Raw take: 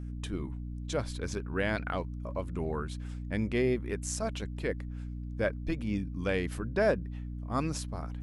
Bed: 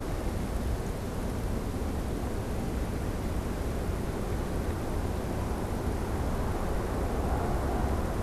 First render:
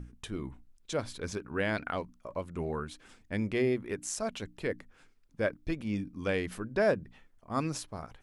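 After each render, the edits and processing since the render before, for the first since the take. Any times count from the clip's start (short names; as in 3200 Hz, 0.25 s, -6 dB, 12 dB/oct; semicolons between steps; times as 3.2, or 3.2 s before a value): notches 60/120/180/240/300 Hz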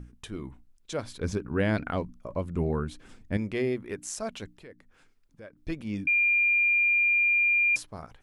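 1.21–3.37 low shelf 410 Hz +10.5 dB; 4.53–5.57 compressor 2:1, threshold -56 dBFS; 6.07–7.76 bleep 2400 Hz -20 dBFS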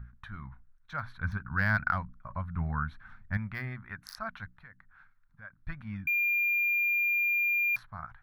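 Wiener smoothing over 9 samples; EQ curve 130 Hz 0 dB, 220 Hz -8 dB, 320 Hz -24 dB, 450 Hz -26 dB, 720 Hz -5 dB, 1500 Hz +11 dB, 2900 Hz -9 dB, 4800 Hz +9 dB, 7300 Hz -21 dB, 12000 Hz +7 dB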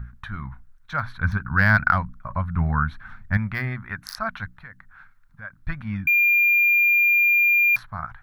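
gain +10 dB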